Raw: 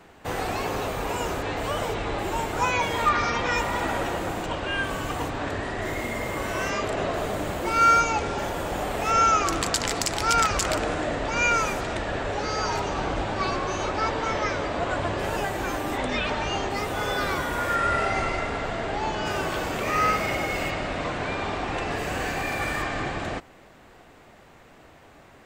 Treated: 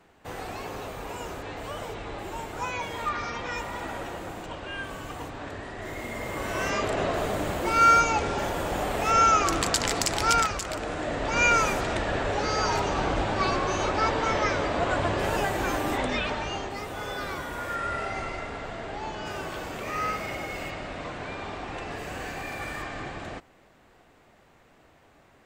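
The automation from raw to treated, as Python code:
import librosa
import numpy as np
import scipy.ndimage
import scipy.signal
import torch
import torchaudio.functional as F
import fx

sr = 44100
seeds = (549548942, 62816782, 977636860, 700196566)

y = fx.gain(x, sr, db=fx.line((5.75, -8.0), (6.75, 0.0), (10.32, 0.0), (10.64, -8.5), (11.4, 1.0), (15.9, 1.0), (16.77, -7.0)))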